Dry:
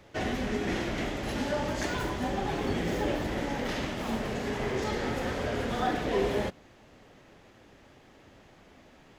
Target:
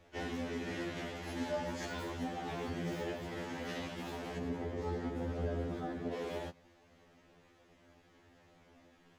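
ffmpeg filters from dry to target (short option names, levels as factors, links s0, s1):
-filter_complex "[0:a]asettb=1/sr,asplit=3[s0][s1][s2];[s0]atrim=end=4.384[s3];[s1]atrim=start=4.38:end=6.13,asetpts=PTS-STARTPTS,afade=t=in:d=0.004:c=qsin,afade=t=out:st=1.746:d=0.004:c=qsin,tiltshelf=f=750:g=7.5[s4];[s2]atrim=start=6.126[s5];[s3][s4]acrossfade=d=0.004:c1=hsin:c2=qsin[s6];[s6][s5]acrossfade=d=0.004:c1=qsin:c2=hsin,alimiter=limit=0.1:level=0:latency=1:release=263,afftfilt=real='re*2*eq(mod(b,4),0)':imag='im*2*eq(mod(b,4),0)':win_size=2048:overlap=0.75,volume=0.501"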